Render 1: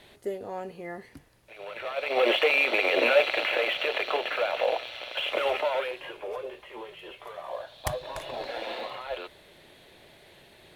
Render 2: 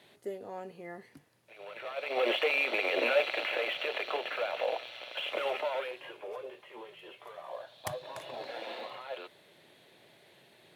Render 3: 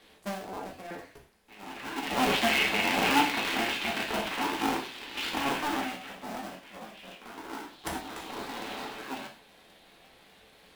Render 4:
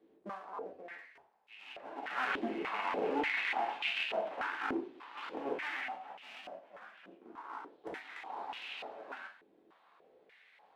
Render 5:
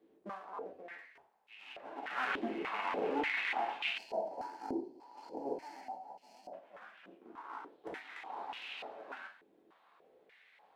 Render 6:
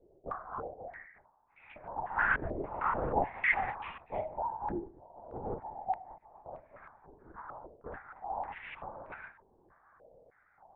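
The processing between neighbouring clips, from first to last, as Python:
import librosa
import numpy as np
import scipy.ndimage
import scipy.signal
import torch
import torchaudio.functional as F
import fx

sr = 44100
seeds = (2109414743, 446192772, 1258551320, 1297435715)

y1 = scipy.signal.sosfilt(scipy.signal.butter(4, 110.0, 'highpass', fs=sr, output='sos'), x)
y1 = y1 * 10.0 ** (-6.0 / 20.0)
y2 = fx.cycle_switch(y1, sr, every=2, mode='inverted')
y2 = fx.rev_gated(y2, sr, seeds[0], gate_ms=150, shape='falling', drr_db=-0.5)
y3 = fx.filter_held_bandpass(y2, sr, hz=3.4, low_hz=340.0, high_hz=2700.0)
y3 = y3 * 10.0 ** (3.0 / 20.0)
y4 = fx.spec_box(y3, sr, start_s=3.98, length_s=2.55, low_hz=1000.0, high_hz=4100.0, gain_db=-20)
y4 = y4 * 10.0 ** (-1.0 / 20.0)
y5 = fx.wiener(y4, sr, points=15)
y5 = fx.lpc_vocoder(y5, sr, seeds[1], excitation='whisper', order=10)
y5 = fx.filter_held_lowpass(y5, sr, hz=3.2, low_hz=630.0, high_hz=2400.0)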